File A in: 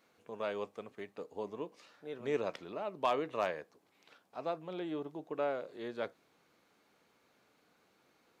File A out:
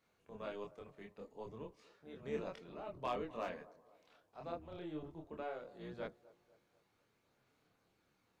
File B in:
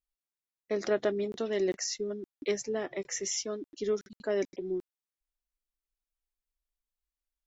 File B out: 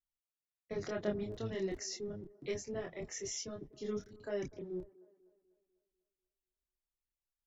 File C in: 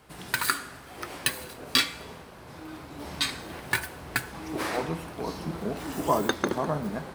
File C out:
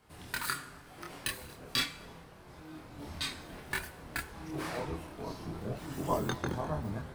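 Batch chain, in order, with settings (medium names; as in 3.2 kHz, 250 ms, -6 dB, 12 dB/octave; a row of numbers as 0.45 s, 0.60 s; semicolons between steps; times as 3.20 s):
octave divider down 1 oct, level 0 dB; chorus voices 2, 0.33 Hz, delay 26 ms, depth 3.5 ms; feedback echo behind a band-pass 247 ms, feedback 46%, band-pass 600 Hz, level -19.5 dB; trim -5 dB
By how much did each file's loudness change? -7.5 LU, -8.0 LU, -7.5 LU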